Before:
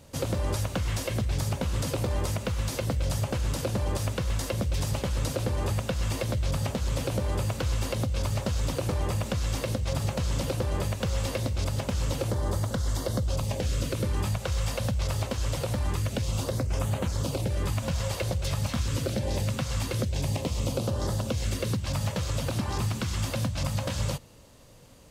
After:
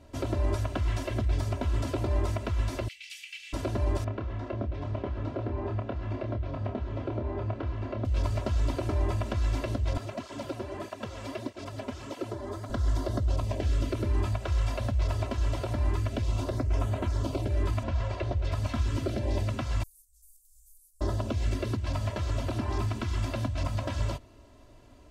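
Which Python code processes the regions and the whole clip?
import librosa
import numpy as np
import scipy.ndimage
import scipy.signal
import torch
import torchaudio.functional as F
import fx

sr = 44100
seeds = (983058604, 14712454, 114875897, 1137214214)

y = fx.chain(x, sr, fx.ellip_highpass(hz=2100.0, order=4, stop_db=60),
    fx.peak_eq(hz=2700.0, db=9.5, octaves=0.66), at=(2.88, 3.53))
y = fx.chain(y, sr, fx.highpass(hz=120.0, slope=6),
    fx.spacing_loss(db_at_10k=34),
    fx.doubler(ms=28.0, db=-6.5), at=(4.04, 8.05))
y = fx.chain(y, sr, fx.highpass(hz=170.0, slope=12),
    fx.flanger_cancel(hz=1.6, depth_ms=6.8), at=(9.97, 12.7))
y = fx.chain(y, sr, fx.lowpass(hz=8400.0, slope=12),
    fx.high_shelf(hz=5500.0, db=-12.0), at=(17.83, 18.52))
y = fx.chain(y, sr, fx.cheby2_bandstop(low_hz=110.0, high_hz=2000.0, order=4, stop_db=80),
    fx.high_shelf(hz=8800.0, db=6.0), at=(19.83, 21.01))
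y = fx.lowpass(y, sr, hz=1800.0, slope=6)
y = y + 0.94 * np.pad(y, (int(3.0 * sr / 1000.0), 0))[:len(y)]
y = F.gain(torch.from_numpy(y), -2.0).numpy()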